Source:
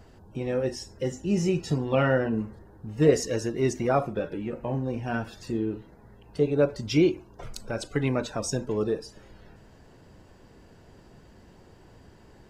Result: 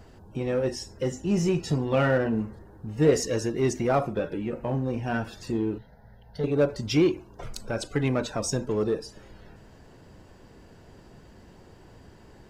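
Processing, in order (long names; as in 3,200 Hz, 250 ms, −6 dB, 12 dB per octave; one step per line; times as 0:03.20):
in parallel at −5 dB: hard clipping −25.5 dBFS, distortion −6 dB
0:05.78–0:06.44: on the sum: phaser with its sweep stopped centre 1,700 Hz, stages 8
level −2 dB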